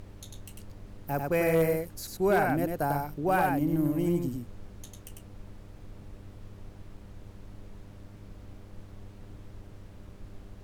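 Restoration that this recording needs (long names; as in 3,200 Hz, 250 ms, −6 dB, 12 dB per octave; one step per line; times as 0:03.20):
clipped peaks rebuilt −17 dBFS
hum removal 100 Hz, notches 6
noise reduction from a noise print 26 dB
echo removal 98 ms −3.5 dB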